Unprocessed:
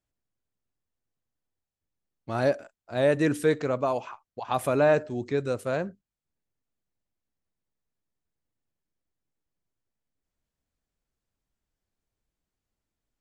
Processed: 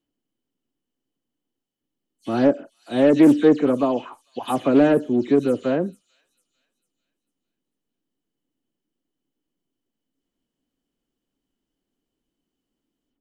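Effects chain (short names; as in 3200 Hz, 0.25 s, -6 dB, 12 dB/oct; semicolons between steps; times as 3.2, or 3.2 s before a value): spectral delay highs early, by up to 0.108 s; bell 74 Hz -10 dB 1.4 oct; small resonant body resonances 270/3000 Hz, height 16 dB, ringing for 20 ms; in parallel at -10 dB: overloaded stage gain 13.5 dB; on the sum: thin delay 0.447 s, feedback 37%, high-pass 5200 Hz, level -12.5 dB; Doppler distortion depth 0.13 ms; gain -2 dB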